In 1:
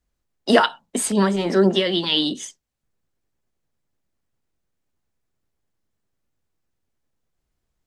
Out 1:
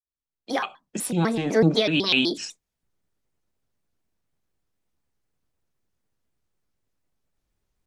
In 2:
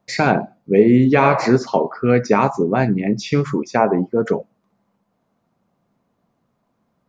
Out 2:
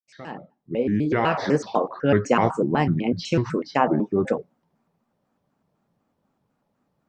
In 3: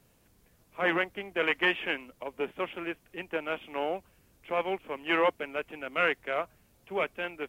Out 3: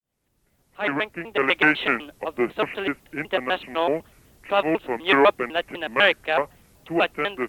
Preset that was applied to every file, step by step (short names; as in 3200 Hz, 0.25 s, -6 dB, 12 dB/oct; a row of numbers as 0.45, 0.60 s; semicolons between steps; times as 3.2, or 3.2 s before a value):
opening faded in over 1.94 s; shaped vibrato square 4 Hz, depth 250 cents; match loudness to -23 LUFS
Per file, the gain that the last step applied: -0.5, -4.0, +9.0 dB